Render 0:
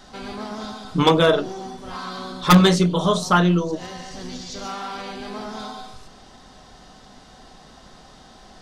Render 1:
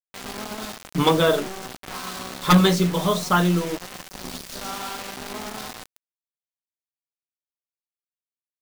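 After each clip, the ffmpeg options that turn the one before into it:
ffmpeg -i in.wav -af "acrusher=bits=4:mix=0:aa=0.000001,volume=-2.5dB" out.wav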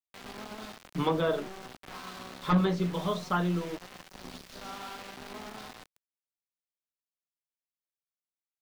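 ffmpeg -i in.wav -filter_complex "[0:a]acrossover=split=4800[link_01][link_02];[link_02]acompressor=threshold=-44dB:ratio=4:attack=1:release=60[link_03];[link_01][link_03]amix=inputs=2:normalize=0,acrossover=split=380|1600[link_04][link_05][link_06];[link_06]alimiter=limit=-22dB:level=0:latency=1:release=273[link_07];[link_04][link_05][link_07]amix=inputs=3:normalize=0,volume=-9dB" out.wav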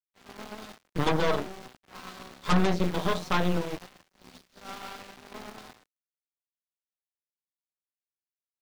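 ffmpeg -i in.wav -af "aeval=exprs='0.211*(cos(1*acos(clip(val(0)/0.211,-1,1)))-cos(1*PI/2))+0.0473*(cos(8*acos(clip(val(0)/0.211,-1,1)))-cos(8*PI/2))':channel_layout=same,agate=range=-33dB:threshold=-39dB:ratio=3:detection=peak" out.wav

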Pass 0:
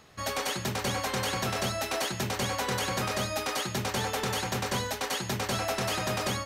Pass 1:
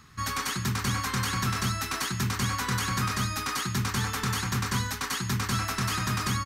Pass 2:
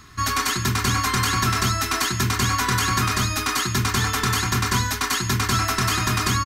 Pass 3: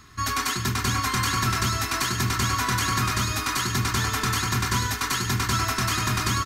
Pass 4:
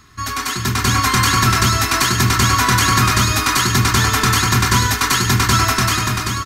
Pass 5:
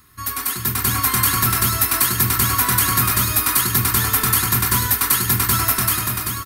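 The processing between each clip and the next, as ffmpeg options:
ffmpeg -i in.wav -af "firequalizer=gain_entry='entry(110,0);entry(260,-5);entry(590,-24);entry(1100,-2);entry(2900,-9);entry(4800,-5)':delay=0.05:min_phase=1,volume=7dB" out.wav
ffmpeg -i in.wav -af "aecho=1:1:2.9:0.46,volume=7dB" out.wav
ffmpeg -i in.wav -af "aecho=1:1:105|657|877:0.211|0.15|0.335,volume=-3.5dB" out.wav
ffmpeg -i in.wav -af "dynaudnorm=framelen=160:gausssize=9:maxgain=9dB,volume=2dB" out.wav
ffmpeg -i in.wav -af "aexciter=amount=8.5:drive=4.5:freq=9100,volume=-6.5dB" out.wav

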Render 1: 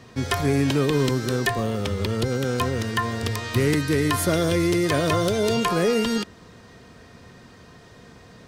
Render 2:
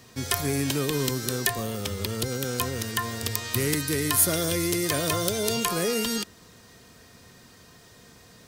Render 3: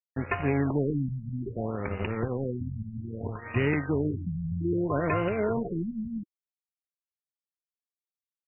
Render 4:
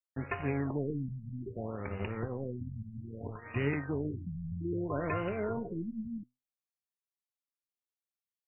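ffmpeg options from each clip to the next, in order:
ffmpeg -i in.wav -af "aemphasis=mode=production:type=75fm,volume=-5.5dB" out.wav
ffmpeg -i in.wav -filter_complex "[0:a]asplit=2[link_01][link_02];[link_02]acompressor=threshold=-34dB:ratio=6,volume=-1.5dB[link_03];[link_01][link_03]amix=inputs=2:normalize=0,aeval=exprs='sgn(val(0))*max(abs(val(0))-0.0237,0)':channel_layout=same,afftfilt=real='re*lt(b*sr/1024,220*pow(3000/220,0.5+0.5*sin(2*PI*0.62*pts/sr)))':imag='im*lt(b*sr/1024,220*pow(3000/220,0.5+0.5*sin(2*PI*0.62*pts/sr)))':win_size=1024:overlap=0.75,volume=2dB" out.wav
ffmpeg -i in.wav -af "flanger=delay=6.6:depth=4.2:regen=79:speed=0.29:shape=triangular,volume=-2dB" out.wav

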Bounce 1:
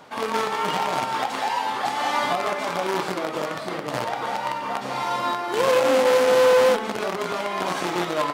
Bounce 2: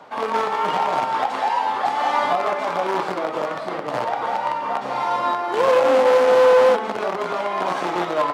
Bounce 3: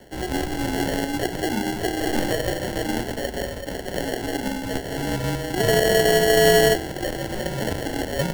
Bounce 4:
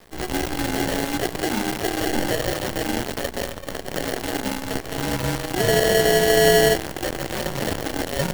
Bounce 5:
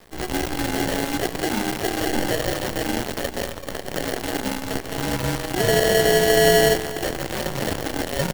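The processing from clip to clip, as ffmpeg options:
ffmpeg -i in.wav -filter_complex "[0:a]lowpass=frequency=3500:poles=1,lowshelf=frequency=120:gain=-7,acrossover=split=560|1100[link_01][link_02][link_03];[link_02]acontrast=81[link_04];[link_01][link_04][link_03]amix=inputs=3:normalize=0" out.wav
ffmpeg -i in.wav -af "acrusher=samples=35:mix=1:aa=0.000001,afreqshift=-76,aeval=exprs='0.794*(cos(1*acos(clip(val(0)/0.794,-1,1)))-cos(1*PI/2))+0.0891*(cos(3*acos(clip(val(0)/0.794,-1,1)))-cos(3*PI/2))+0.00562*(cos(6*acos(clip(val(0)/0.794,-1,1)))-cos(6*PI/2))':channel_layout=same" out.wav
ffmpeg -i in.wav -af "acrusher=bits=5:dc=4:mix=0:aa=0.000001" out.wav
ffmpeg -i in.wav -af "aecho=1:1:384:0.141" out.wav

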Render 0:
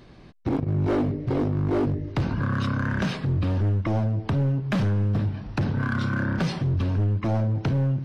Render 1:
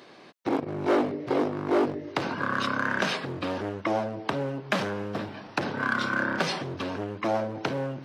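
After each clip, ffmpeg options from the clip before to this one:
ffmpeg -i in.wav -af "highpass=410,volume=5dB" out.wav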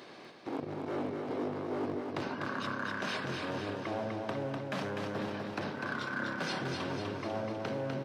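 ffmpeg -i in.wav -af "areverse,acompressor=threshold=-35dB:ratio=6,areverse,aecho=1:1:249|498|747|996|1245|1494|1743|1992:0.631|0.353|0.198|0.111|0.0621|0.0347|0.0195|0.0109" out.wav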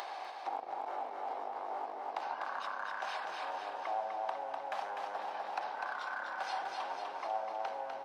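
ffmpeg -i in.wav -af "acompressor=threshold=-42dB:ratio=5,highpass=frequency=790:width_type=q:width=6.2,acompressor=mode=upward:threshold=-41dB:ratio=2.5,volume=1.5dB" out.wav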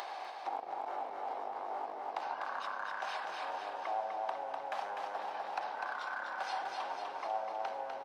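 ffmpeg -i in.wav -filter_complex "[0:a]asplit=5[link_01][link_02][link_03][link_04][link_05];[link_02]adelay=107,afreqshift=-85,volume=-22dB[link_06];[link_03]adelay=214,afreqshift=-170,volume=-26.9dB[link_07];[link_04]adelay=321,afreqshift=-255,volume=-31.8dB[link_08];[link_05]adelay=428,afreqshift=-340,volume=-36.6dB[link_09];[link_01][link_06][link_07][link_08][link_09]amix=inputs=5:normalize=0" out.wav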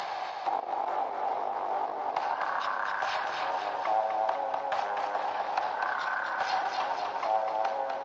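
ffmpeg -i in.wav -af "lowshelf=frequency=100:gain=-8.5,volume=8.5dB" -ar 16000 -c:a libspeex -b:a 34k out.spx

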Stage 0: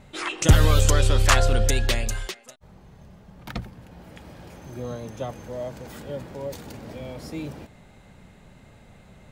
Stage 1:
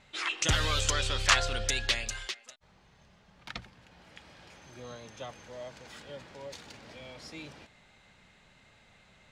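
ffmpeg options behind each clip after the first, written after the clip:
ffmpeg -i in.wav -af "lowpass=5500,tiltshelf=frequency=970:gain=-8.5,volume=-7dB" out.wav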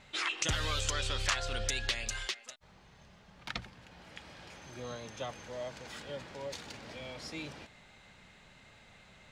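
ffmpeg -i in.wav -af "acompressor=threshold=-34dB:ratio=3,volume=2.5dB" out.wav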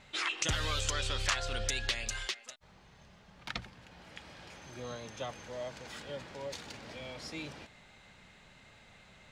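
ffmpeg -i in.wav -af anull out.wav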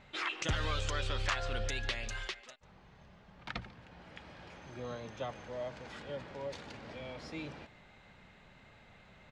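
ffmpeg -i in.wav -af "aemphasis=mode=reproduction:type=75fm,aecho=1:1:144:0.0944" out.wav

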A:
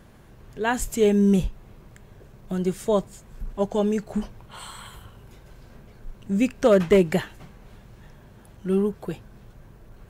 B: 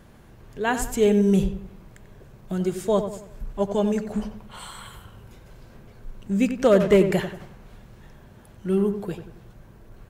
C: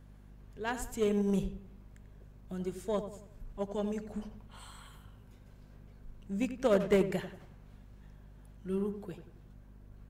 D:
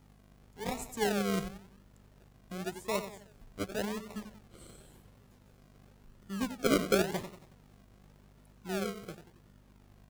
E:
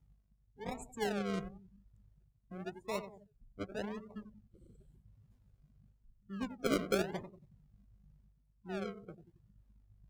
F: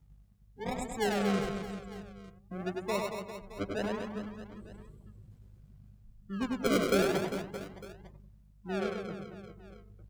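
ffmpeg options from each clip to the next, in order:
ffmpeg -i in.wav -filter_complex "[0:a]asplit=2[link_01][link_02];[link_02]adelay=92,lowpass=frequency=2300:poles=1,volume=-9dB,asplit=2[link_03][link_04];[link_04]adelay=92,lowpass=frequency=2300:poles=1,volume=0.43,asplit=2[link_05][link_06];[link_06]adelay=92,lowpass=frequency=2300:poles=1,volume=0.43,asplit=2[link_07][link_08];[link_08]adelay=92,lowpass=frequency=2300:poles=1,volume=0.43,asplit=2[link_09][link_10];[link_10]adelay=92,lowpass=frequency=2300:poles=1,volume=0.43[link_11];[link_01][link_03][link_05][link_07][link_09][link_11]amix=inputs=6:normalize=0" out.wav
ffmpeg -i in.wav -af "aeval=exprs='0.447*(cos(1*acos(clip(val(0)/0.447,-1,1)))-cos(1*PI/2))+0.0631*(cos(3*acos(clip(val(0)/0.447,-1,1)))-cos(3*PI/2))':channel_layout=same,aeval=exprs='val(0)+0.00562*(sin(2*PI*50*n/s)+sin(2*PI*2*50*n/s)/2+sin(2*PI*3*50*n/s)/3+sin(2*PI*4*50*n/s)/4+sin(2*PI*5*50*n/s)/5)':channel_layout=same,volume=-8dB" out.wav
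ffmpeg -i in.wav -filter_complex "[0:a]lowshelf=frequency=99:gain=-10.5,acrossover=split=3900[link_01][link_02];[link_01]acrusher=samples=39:mix=1:aa=0.000001:lfo=1:lforange=23.4:lforate=0.92[link_03];[link_03][link_02]amix=inputs=2:normalize=0" out.wav
ffmpeg -i in.wav -af "afftdn=noise_reduction=26:noise_floor=-44,areverse,acompressor=mode=upward:threshold=-48dB:ratio=2.5,areverse,volume=-5dB" out.wav
ffmpeg -i in.wav -filter_complex "[0:a]asoftclip=type=tanh:threshold=-26dB,asplit=2[link_01][link_02];[link_02]aecho=0:1:100|230|399|618.7|904.3:0.631|0.398|0.251|0.158|0.1[link_03];[link_01][link_03]amix=inputs=2:normalize=0,volume=6dB" out.wav

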